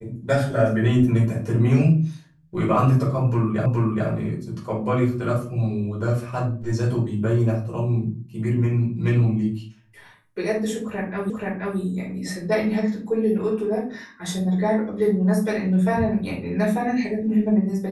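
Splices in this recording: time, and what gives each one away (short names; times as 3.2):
3.66 repeat of the last 0.42 s
11.3 repeat of the last 0.48 s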